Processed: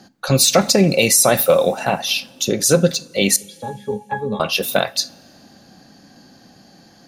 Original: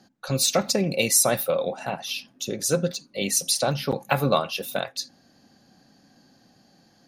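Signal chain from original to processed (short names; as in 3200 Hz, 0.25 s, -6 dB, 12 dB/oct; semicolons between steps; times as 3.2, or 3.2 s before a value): 3.36–4.4 octave resonator G#, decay 0.14 s; two-slope reverb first 0.27 s, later 2.5 s, from -20 dB, DRR 16.5 dB; maximiser +12.5 dB; gain -2 dB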